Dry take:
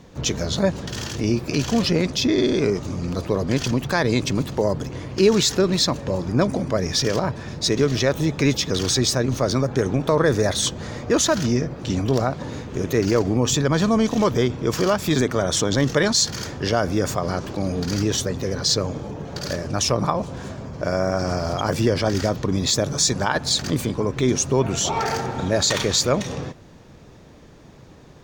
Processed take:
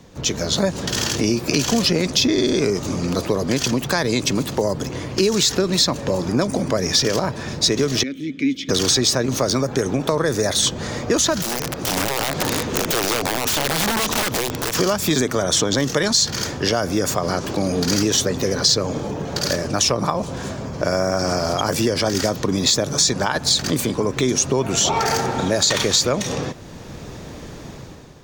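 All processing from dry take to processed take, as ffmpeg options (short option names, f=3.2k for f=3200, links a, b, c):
-filter_complex "[0:a]asettb=1/sr,asplit=3[a][b][c];[a]atrim=end=8.034[d];[b]atrim=start=8.03:end=8.69,asetpts=PTS-STARTPTS,afade=t=in:d=0.004:c=qsin,afade=t=out:st=0.656:d=0.004:c=qsin,asplit=3[e][f][g];[e]bandpass=f=270:t=q:w=8,volume=0dB[h];[f]bandpass=f=2.29k:t=q:w=8,volume=-6dB[i];[g]bandpass=f=3.01k:t=q:w=8,volume=-9dB[j];[h][i][j]amix=inputs=3:normalize=0,highshelf=f=11k:g=9.5[k];[c]atrim=start=8.686[l];[d][k]acrossfade=d=0.004:c1=hsin:c2=qsin[m];[m][l]acrossfade=d=0.004:c1=qsin:c2=hsin,asettb=1/sr,asplit=3[n][o][p];[n]atrim=end=11.424[q];[o]atrim=start=11.42:end=14.75,asetpts=PTS-STARTPTS,afade=t=in:d=0.004:c=qsin,afade=t=out:st=3.326:d=0.004:c=qsin,bass=f=250:g=-3,treble=f=4k:g=3,acompressor=threshold=-25dB:ratio=10:attack=3.2:release=140:knee=1:detection=peak,aeval=exprs='(mod(17.8*val(0)+1,2)-1)/17.8':c=same[r];[p]atrim=start=14.746[s];[q][r]acrossfade=d=0.004:c1=hsin:c2=qsin[t];[t][s]acrossfade=d=0.004:c1=qsin:c2=hsin,dynaudnorm=f=120:g=9:m=11.5dB,highshelf=f=4.9k:g=6,acrossover=split=170|5200[u][v][w];[u]acompressor=threshold=-32dB:ratio=4[x];[v]acompressor=threshold=-17dB:ratio=4[y];[w]acompressor=threshold=-23dB:ratio=4[z];[x][y][z]amix=inputs=3:normalize=0"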